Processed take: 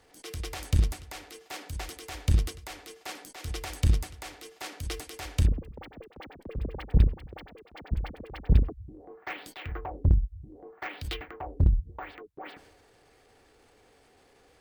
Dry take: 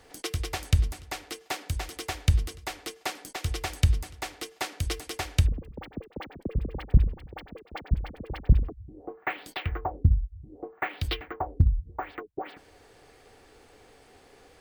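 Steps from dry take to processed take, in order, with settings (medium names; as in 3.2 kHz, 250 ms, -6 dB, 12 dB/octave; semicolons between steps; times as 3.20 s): Chebyshev shaper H 7 -21 dB, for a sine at -7.5 dBFS; transient shaper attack -8 dB, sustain +6 dB; trim +3 dB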